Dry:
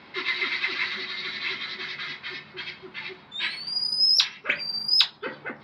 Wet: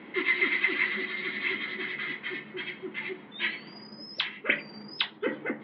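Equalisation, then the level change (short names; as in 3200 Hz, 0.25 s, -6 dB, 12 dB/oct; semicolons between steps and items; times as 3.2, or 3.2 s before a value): air absorption 79 m; speaker cabinet 200–3500 Hz, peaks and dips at 210 Hz +6 dB, 310 Hz +9 dB, 470 Hz +6 dB, 2000 Hz +9 dB, 3100 Hz +8 dB; tilt -2.5 dB/oct; -2.5 dB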